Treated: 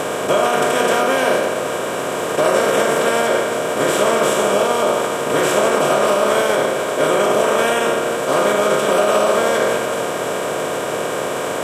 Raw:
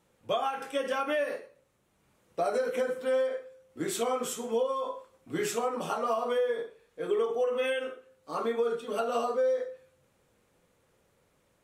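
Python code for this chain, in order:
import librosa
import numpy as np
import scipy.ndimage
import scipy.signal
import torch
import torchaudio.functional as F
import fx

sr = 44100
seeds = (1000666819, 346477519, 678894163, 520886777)

y = fx.bin_compress(x, sr, power=0.2)
y = fx.echo_alternate(y, sr, ms=304, hz=1100.0, feedback_pct=72, wet_db=-12.5)
y = fx.pitch_keep_formants(y, sr, semitones=-2.0)
y = y * librosa.db_to_amplitude(5.5)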